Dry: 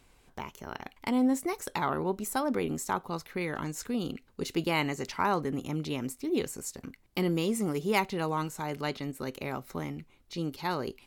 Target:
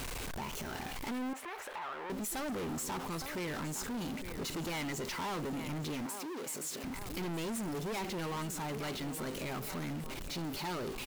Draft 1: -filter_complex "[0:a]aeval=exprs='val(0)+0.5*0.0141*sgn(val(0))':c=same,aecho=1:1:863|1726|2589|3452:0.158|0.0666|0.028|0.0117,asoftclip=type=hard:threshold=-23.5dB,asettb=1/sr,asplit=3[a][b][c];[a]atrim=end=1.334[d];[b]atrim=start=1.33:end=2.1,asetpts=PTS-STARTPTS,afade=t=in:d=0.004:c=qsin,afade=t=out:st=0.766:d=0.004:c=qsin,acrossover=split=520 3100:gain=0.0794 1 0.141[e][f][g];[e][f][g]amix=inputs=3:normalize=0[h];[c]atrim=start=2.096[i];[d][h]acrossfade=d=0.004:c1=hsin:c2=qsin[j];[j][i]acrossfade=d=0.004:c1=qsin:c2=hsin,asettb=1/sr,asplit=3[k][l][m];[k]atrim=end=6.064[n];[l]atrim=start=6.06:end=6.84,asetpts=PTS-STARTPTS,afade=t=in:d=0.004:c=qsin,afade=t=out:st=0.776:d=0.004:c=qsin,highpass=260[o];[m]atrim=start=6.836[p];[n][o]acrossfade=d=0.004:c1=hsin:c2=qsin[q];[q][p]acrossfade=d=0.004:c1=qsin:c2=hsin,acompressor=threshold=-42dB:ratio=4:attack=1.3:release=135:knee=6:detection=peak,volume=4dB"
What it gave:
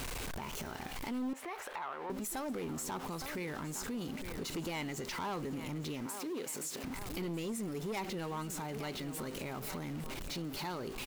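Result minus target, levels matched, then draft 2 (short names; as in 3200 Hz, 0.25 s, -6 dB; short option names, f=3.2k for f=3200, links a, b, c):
hard clip: distortion -9 dB
-filter_complex "[0:a]aeval=exprs='val(0)+0.5*0.0141*sgn(val(0))':c=same,aecho=1:1:863|1726|2589|3452:0.158|0.0666|0.028|0.0117,asoftclip=type=hard:threshold=-32.5dB,asettb=1/sr,asplit=3[a][b][c];[a]atrim=end=1.334[d];[b]atrim=start=1.33:end=2.1,asetpts=PTS-STARTPTS,afade=t=in:d=0.004:c=qsin,afade=t=out:st=0.766:d=0.004:c=qsin,acrossover=split=520 3100:gain=0.0794 1 0.141[e][f][g];[e][f][g]amix=inputs=3:normalize=0[h];[c]atrim=start=2.096[i];[d][h]acrossfade=d=0.004:c1=hsin:c2=qsin[j];[j][i]acrossfade=d=0.004:c1=qsin:c2=hsin,asettb=1/sr,asplit=3[k][l][m];[k]atrim=end=6.064[n];[l]atrim=start=6.06:end=6.84,asetpts=PTS-STARTPTS,afade=t=in:d=0.004:c=qsin,afade=t=out:st=0.776:d=0.004:c=qsin,highpass=260[o];[m]atrim=start=6.836[p];[n][o]acrossfade=d=0.004:c1=hsin:c2=qsin[q];[q][p]acrossfade=d=0.004:c1=qsin:c2=hsin,acompressor=threshold=-42dB:ratio=4:attack=1.3:release=135:knee=6:detection=peak,volume=4dB"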